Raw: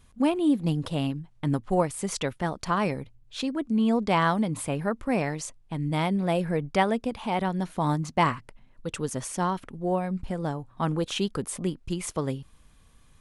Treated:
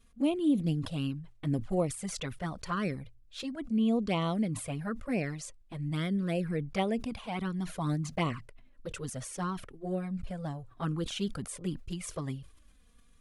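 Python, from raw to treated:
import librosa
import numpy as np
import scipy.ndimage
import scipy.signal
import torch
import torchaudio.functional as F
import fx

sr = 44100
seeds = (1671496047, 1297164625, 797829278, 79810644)

y = fx.peak_eq(x, sr, hz=900.0, db=-9.5, octaves=0.29)
y = fx.env_flanger(y, sr, rest_ms=4.5, full_db=-19.5)
y = fx.sustainer(y, sr, db_per_s=120.0)
y = y * 10.0 ** (-3.5 / 20.0)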